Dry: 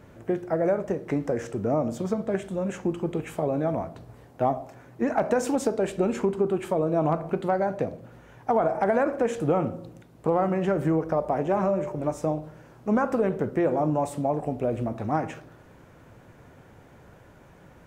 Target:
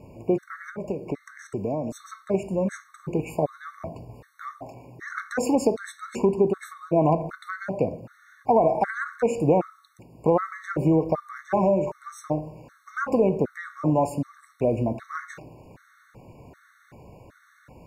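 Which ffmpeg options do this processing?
-filter_complex "[0:a]asuperstop=centerf=3200:order=20:qfactor=5.8,asettb=1/sr,asplit=3[a][b][c];[a]atrim=end=0.704[d];[b]atrim=start=0.7:end=1.92,asetpts=PTS-STARTPTS,afade=t=in:d=0.004:c=qsin,afade=t=out:st=1.216:d=0.004:c=qsin,acrossover=split=300|1400[e][f][g];[e]acompressor=threshold=-36dB:ratio=4[h];[f]acompressor=threshold=-33dB:ratio=4[i];[g]acompressor=threshold=-48dB:ratio=4[j];[h][i][j]amix=inputs=3:normalize=0[k];[c]atrim=start=1.916[l];[d][k]acrossfade=d=0.004:c1=hsin:c2=qsin[m];[m][l]acrossfade=d=0.004:c1=qsin:c2=hsin,afftfilt=real='re*gt(sin(2*PI*1.3*pts/sr)*(1-2*mod(floor(b*sr/1024/1100),2)),0)':imag='im*gt(sin(2*PI*1.3*pts/sr)*(1-2*mod(floor(b*sr/1024/1100),2)),0)':win_size=1024:overlap=0.75,volume=4dB"

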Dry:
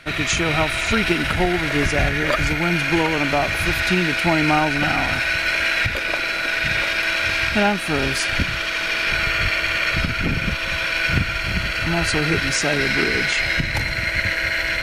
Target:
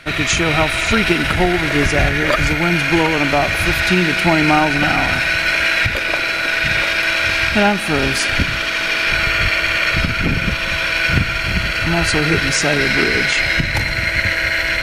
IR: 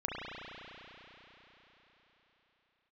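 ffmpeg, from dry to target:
-filter_complex "[0:a]asplit=2[a][b];[1:a]atrim=start_sample=2205,adelay=55[c];[b][c]afir=irnorm=-1:irlink=0,volume=-24dB[d];[a][d]amix=inputs=2:normalize=0,volume=4dB"

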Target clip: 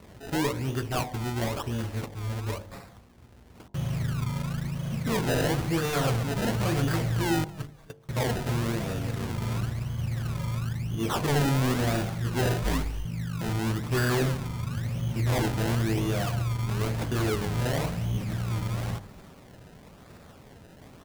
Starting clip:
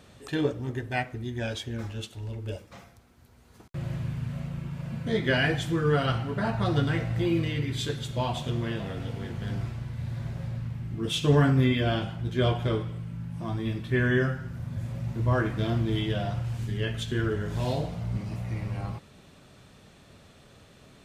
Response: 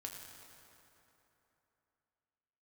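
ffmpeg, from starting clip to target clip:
-filter_complex "[0:a]acrusher=samples=27:mix=1:aa=0.000001:lfo=1:lforange=27:lforate=0.98,asettb=1/sr,asplit=3[a][b][c];[a]atrim=end=7.444[d];[b]atrim=start=7.44:end=8.09,asetpts=PTS-STARTPTS,afade=t=in:d=0.004:c=qsin,afade=t=out:st=0.646:d=0.004:c=qsin,agate=range=-30dB:threshold=-25dB:ratio=16:detection=peak[e];[c]atrim=start=8.086[f];[d][e]acrossfade=d=0.004:c1=hsin:c2=qsin[g];[g][f]acrossfade=d=0.004:c1=qsin:c2=hsin,asoftclip=type=tanh:threshold=-25.5dB,bandreject=f=49.84:t=h:w=4,bandreject=f=99.68:t=h:w=4,bandreject=f=149.52:t=h:w=4,bandreject=f=199.36:t=h:w=4,bandreject=f=249.2:t=h:w=4,bandreject=f=299.04:t=h:w=4,bandreject=f=348.88:t=h:w=4,bandreject=f=398.72:t=h:w=4,bandreject=f=448.56:t=h:w=4,bandreject=f=498.4:t=h:w=4,bandreject=f=548.24:t=h:w=4,bandreject=f=598.08:t=h:w=4,bandreject=f=647.92:t=h:w=4,bandreject=f=697.76:t=h:w=4,bandreject=f=747.6:t=h:w=4,bandreject=f=797.44:t=h:w=4,bandreject=f=847.28:t=h:w=4,bandreject=f=897.12:t=h:w=4,bandreject=f=946.96:t=h:w=4,bandreject=f=996.8:t=h:w=4,bandreject=f=1.04664k:t=h:w=4,asettb=1/sr,asplit=3[h][i][j];[h]atrim=end=12.634[k];[i]atrim=start=12.63:end=13.05,asetpts=PTS-STARTPTS,afade=t=in:d=0.004:c=qsin,afade=t=out:st=0.416:d=0.004:c=qsin,afreqshift=-170[l];[j]atrim=start=13.046[m];[k][l]acrossfade=d=0.004:c1=hsin:c2=qsin[n];[n][m]acrossfade=d=0.004:c1=qsin:c2=hsin,asplit=2[o][p];[p]asplit=2[q][r];[q]adelay=231,afreqshift=-150,volume=-23dB[s];[r]adelay=462,afreqshift=-300,volume=-32.9dB[t];[s][t]amix=inputs=2:normalize=0[u];[o][u]amix=inputs=2:normalize=0,volume=4.5dB"

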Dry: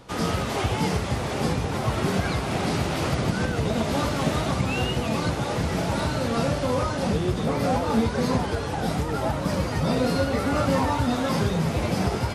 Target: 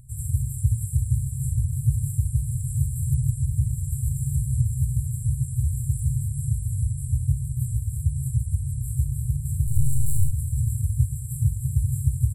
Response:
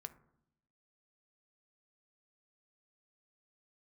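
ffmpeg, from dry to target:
-filter_complex "[0:a]asplit=3[a][b][c];[a]afade=t=out:st=9.66:d=0.02[d];[b]aeval=exprs='0.282*(cos(1*acos(clip(val(0)/0.282,-1,1)))-cos(1*PI/2))+0.0708*(cos(8*acos(clip(val(0)/0.282,-1,1)))-cos(8*PI/2))':c=same,afade=t=in:st=9.66:d=0.02,afade=t=out:st=10.3:d=0.02[e];[c]afade=t=in:st=10.3:d=0.02[f];[d][e][f]amix=inputs=3:normalize=0,aecho=1:1:427:0.0631,afftfilt=real='re*(1-between(b*sr/4096,150,7300))':imag='im*(1-between(b*sr/4096,150,7300))':win_size=4096:overlap=0.75,volume=6.5dB"

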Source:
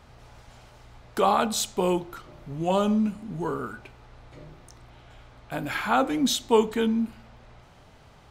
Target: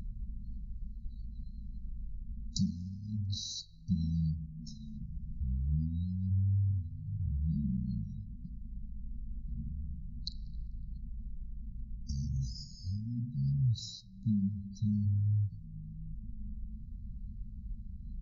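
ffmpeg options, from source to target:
-filter_complex "[0:a]acompressor=mode=upward:threshold=-29dB:ratio=2.5,highshelf=f=3.5k:t=q:w=1.5:g=6,asplit=2[a][b];[b]asplit=3[c][d][e];[c]adelay=313,afreqshift=120,volume=-22dB[f];[d]adelay=626,afreqshift=240,volume=-29.5dB[g];[e]adelay=939,afreqshift=360,volume=-37.1dB[h];[f][g][h]amix=inputs=3:normalize=0[i];[a][i]amix=inputs=2:normalize=0,acompressor=threshold=-25dB:ratio=20,afftfilt=real='re*(1-between(b*sr/4096,530,8400))':imag='im*(1-between(b*sr/4096,530,8400))':win_size=4096:overlap=0.75,afftdn=nr=34:nf=-47,equalizer=f=84:w=1.2:g=6.5,asetrate=20110,aresample=44100,volume=-2dB"

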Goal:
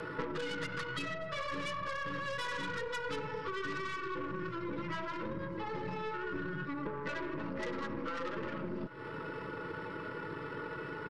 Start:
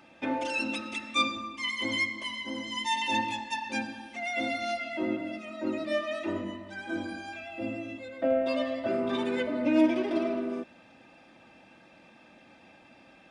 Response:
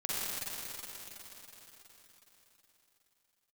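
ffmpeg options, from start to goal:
-filter_complex "[0:a]afftfilt=real='re*lt(hypot(re,im),0.158)':imag='im*lt(hypot(re,im),0.158)':win_size=1024:overlap=0.75,highpass=f=460:p=1,equalizer=f=900:w=2.5:g=3.5,aeval=exprs='0.075*(cos(1*acos(clip(val(0)/0.075,-1,1)))-cos(1*PI/2))+0.0168*(cos(5*acos(clip(val(0)/0.075,-1,1)))-cos(5*PI/2))+0.0119*(cos(6*acos(clip(val(0)/0.075,-1,1)))-cos(6*PI/2))+0.0211*(cos(8*acos(clip(val(0)/0.075,-1,1)))-cos(8*PI/2))':c=same,asplit=2[a][b];[b]asoftclip=type=tanh:threshold=-32dB,volume=-9dB[c];[a][c]amix=inputs=2:normalize=0,asetrate=24046,aresample=44100,atempo=1.83401,acompressor=threshold=-43dB:ratio=8,atempo=1.2,asuperstop=centerf=740:order=8:qfactor=3.6,aecho=1:1:593:0.0668,volume=8dB"

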